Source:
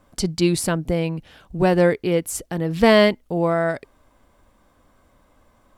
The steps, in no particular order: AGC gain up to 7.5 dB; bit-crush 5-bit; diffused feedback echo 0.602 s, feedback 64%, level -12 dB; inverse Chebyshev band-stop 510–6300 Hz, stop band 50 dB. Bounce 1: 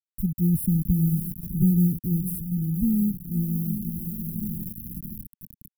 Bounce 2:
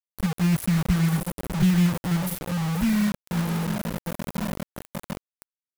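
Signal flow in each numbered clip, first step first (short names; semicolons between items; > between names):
diffused feedback echo > bit-crush > AGC > inverse Chebyshev band-stop; diffused feedback echo > AGC > inverse Chebyshev band-stop > bit-crush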